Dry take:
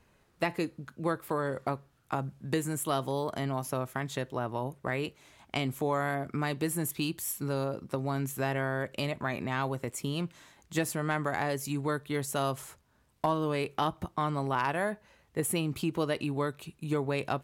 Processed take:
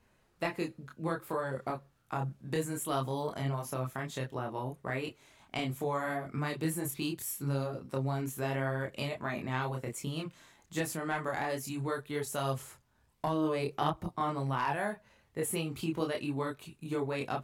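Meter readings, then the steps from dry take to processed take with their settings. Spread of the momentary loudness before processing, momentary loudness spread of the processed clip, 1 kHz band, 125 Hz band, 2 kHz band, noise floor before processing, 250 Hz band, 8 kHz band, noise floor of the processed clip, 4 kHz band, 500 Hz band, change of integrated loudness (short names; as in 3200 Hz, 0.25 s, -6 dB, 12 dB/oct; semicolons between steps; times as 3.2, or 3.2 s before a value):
5 LU, 6 LU, -2.5 dB, -1.5 dB, -3.0 dB, -67 dBFS, -3.0 dB, -3.0 dB, -69 dBFS, -3.0 dB, -3.0 dB, -2.5 dB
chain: chorus voices 6, 0.6 Hz, delay 27 ms, depth 4.9 ms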